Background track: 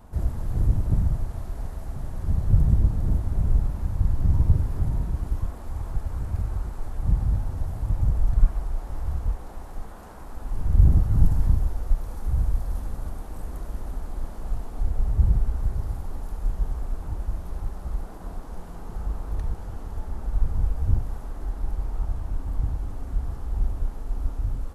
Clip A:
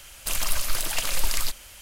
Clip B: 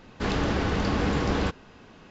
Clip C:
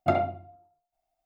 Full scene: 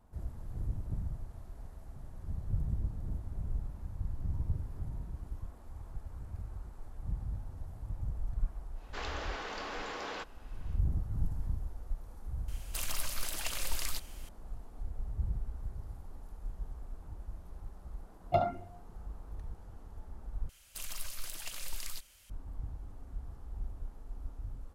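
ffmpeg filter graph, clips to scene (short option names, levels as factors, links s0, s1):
-filter_complex "[1:a]asplit=2[s0][s1];[0:a]volume=0.178[s2];[2:a]highpass=580[s3];[3:a]asplit=2[s4][s5];[s5]afreqshift=2.9[s6];[s4][s6]amix=inputs=2:normalize=1[s7];[s1]equalizer=f=680:w=0.39:g=-4.5[s8];[s2]asplit=2[s9][s10];[s9]atrim=end=20.494[s11];[s8]atrim=end=1.81,asetpts=PTS-STARTPTS,volume=0.188[s12];[s10]atrim=start=22.296[s13];[s3]atrim=end=2.1,asetpts=PTS-STARTPTS,volume=0.355,afade=t=in:d=0.1,afade=t=out:st=2:d=0.1,adelay=8730[s14];[s0]atrim=end=1.81,asetpts=PTS-STARTPTS,volume=0.316,afade=t=in:d=0.004:c=hsin,afade=t=out:st=1.806:d=0.004:c=hsin,adelay=12480[s15];[s7]atrim=end=1.25,asetpts=PTS-STARTPTS,volume=0.708,afade=t=in:d=0.004:c=hsin,afade=t=out:st=1.246:d=0.004:c=hsin,adelay=18260[s16];[s11][s12]acrossfade=d=0.004:c1=hsin:c2=hsin[s17];[s17][s13]acrossfade=d=0.004:c1=hsin:c2=hsin[s18];[s18][s14][s15][s16]amix=inputs=4:normalize=0"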